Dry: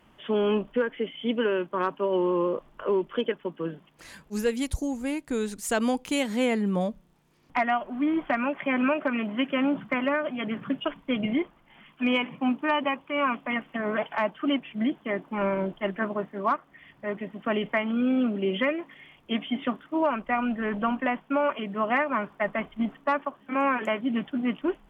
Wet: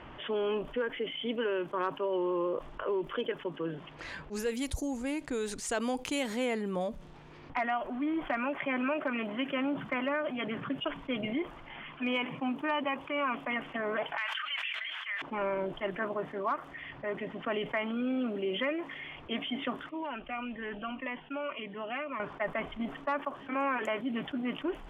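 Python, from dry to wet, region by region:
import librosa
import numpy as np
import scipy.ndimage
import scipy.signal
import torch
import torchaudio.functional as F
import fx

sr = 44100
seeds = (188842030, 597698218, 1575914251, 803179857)

y = fx.chain(x, sr, fx.highpass(hz=1500.0, slope=24),
    fx.sustainer(db_per_s=29.0), at=(14.17, 15.22))
y = fx.chain(y, sr, fx.ladder_lowpass(hz=3400.0, resonance_pct=55),
    fx.notch_cascade(direction='falling', hz=1.8), at=(19.89, 22.2))
y = fx.env_lowpass(y, sr, base_hz=2700.0, full_db=-24.0)
y = fx.peak_eq(y, sr, hz=200.0, db=-9.5, octaves=0.42)
y = fx.env_flatten(y, sr, amount_pct=50)
y = y * 10.0 ** (-7.5 / 20.0)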